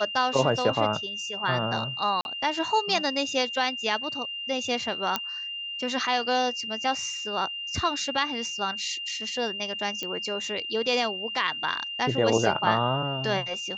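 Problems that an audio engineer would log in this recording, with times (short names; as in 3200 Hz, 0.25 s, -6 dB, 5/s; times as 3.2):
tone 2800 Hz -32 dBFS
2.21–2.25 gap 41 ms
5.16 pop -10 dBFS
10.03 pop -17 dBFS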